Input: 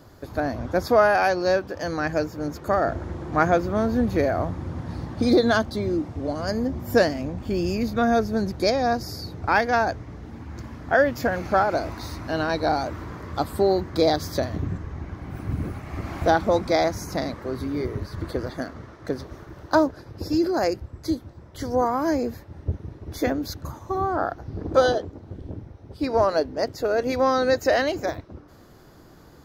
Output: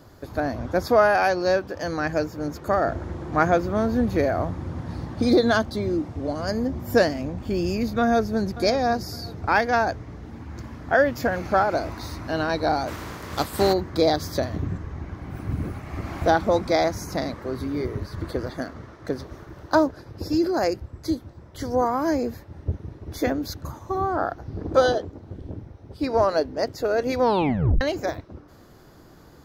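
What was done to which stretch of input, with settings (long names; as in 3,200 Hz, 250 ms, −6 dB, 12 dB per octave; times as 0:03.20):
0:08.00–0:08.47: delay throw 560 ms, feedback 35%, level −15.5 dB
0:12.87–0:13.72: compressing power law on the bin magnitudes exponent 0.65
0:27.20: tape stop 0.61 s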